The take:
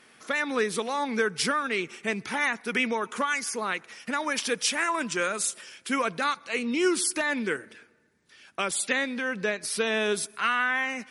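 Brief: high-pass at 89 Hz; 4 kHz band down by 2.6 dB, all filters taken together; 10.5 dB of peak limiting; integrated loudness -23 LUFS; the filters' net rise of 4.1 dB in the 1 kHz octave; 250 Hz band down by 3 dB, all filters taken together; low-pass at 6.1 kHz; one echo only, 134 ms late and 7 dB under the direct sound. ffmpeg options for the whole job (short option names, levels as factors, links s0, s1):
-af "highpass=89,lowpass=6100,equalizer=f=250:t=o:g=-4,equalizer=f=1000:t=o:g=5.5,equalizer=f=4000:t=o:g=-3,alimiter=limit=0.1:level=0:latency=1,aecho=1:1:134:0.447,volume=2.11"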